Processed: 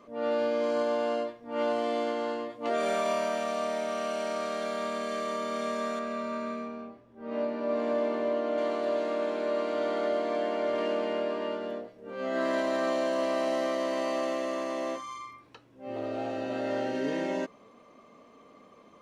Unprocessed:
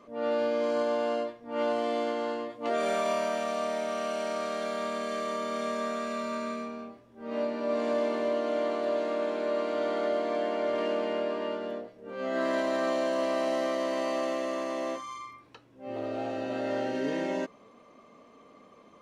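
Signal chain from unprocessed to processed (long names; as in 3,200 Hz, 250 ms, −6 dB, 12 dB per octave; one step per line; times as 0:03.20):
0:05.99–0:08.58: high-shelf EQ 4,000 Hz −11 dB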